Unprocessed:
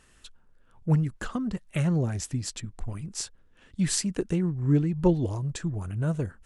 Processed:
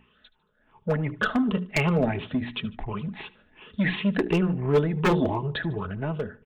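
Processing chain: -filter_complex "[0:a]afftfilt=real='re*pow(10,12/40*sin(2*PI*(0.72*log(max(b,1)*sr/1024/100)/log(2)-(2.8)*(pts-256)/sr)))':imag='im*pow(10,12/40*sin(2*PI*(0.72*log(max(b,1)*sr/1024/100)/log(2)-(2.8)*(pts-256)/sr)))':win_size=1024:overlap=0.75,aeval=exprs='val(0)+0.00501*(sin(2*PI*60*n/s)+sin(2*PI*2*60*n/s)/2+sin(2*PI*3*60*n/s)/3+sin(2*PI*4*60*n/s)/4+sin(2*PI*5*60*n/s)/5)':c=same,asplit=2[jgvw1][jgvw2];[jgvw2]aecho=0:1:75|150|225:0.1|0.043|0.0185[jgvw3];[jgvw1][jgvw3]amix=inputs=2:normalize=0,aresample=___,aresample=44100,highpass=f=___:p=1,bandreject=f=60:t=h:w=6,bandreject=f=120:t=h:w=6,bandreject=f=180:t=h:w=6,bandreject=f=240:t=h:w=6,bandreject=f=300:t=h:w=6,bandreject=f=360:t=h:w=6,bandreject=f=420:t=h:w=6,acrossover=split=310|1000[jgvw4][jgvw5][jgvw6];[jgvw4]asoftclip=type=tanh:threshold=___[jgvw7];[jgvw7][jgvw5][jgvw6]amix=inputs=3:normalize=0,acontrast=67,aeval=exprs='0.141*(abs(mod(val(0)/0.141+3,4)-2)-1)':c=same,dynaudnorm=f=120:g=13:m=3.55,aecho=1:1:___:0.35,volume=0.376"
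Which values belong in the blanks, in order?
8000, 170, 0.02, 4.7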